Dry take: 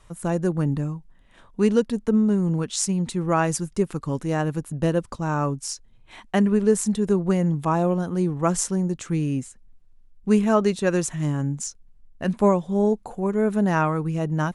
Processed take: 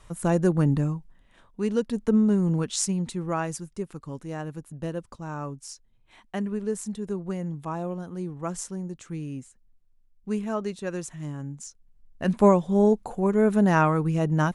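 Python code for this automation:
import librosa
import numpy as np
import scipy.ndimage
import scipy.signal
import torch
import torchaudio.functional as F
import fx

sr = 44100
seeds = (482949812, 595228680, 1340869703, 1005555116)

y = fx.gain(x, sr, db=fx.line((0.92, 1.5), (1.62, -8.0), (2.04, -1.0), (2.71, -1.0), (3.71, -10.0), (11.65, -10.0), (12.36, 1.0)))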